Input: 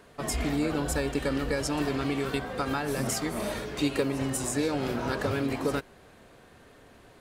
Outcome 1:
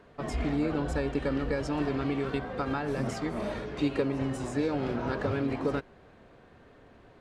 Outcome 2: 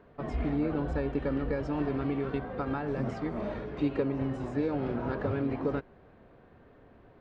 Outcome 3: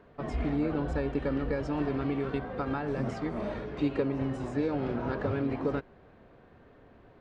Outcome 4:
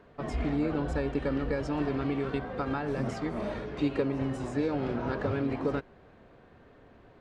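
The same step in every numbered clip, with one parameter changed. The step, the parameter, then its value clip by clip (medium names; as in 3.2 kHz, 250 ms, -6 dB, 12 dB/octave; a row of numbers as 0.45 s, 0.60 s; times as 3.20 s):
tape spacing loss, at 10 kHz: 20 dB, 45 dB, 37 dB, 29 dB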